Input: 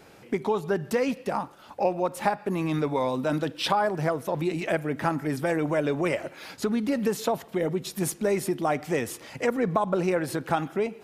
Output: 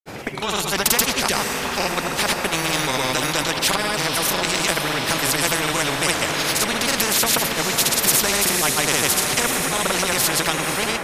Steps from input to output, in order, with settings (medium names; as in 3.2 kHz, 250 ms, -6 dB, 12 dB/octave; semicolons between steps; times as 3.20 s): granulator, pitch spread up and down by 0 st; on a send: echo that smears into a reverb 526 ms, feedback 71%, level -14 dB; on the sum: level rider gain up to 11 dB; spectrum-flattening compressor 4:1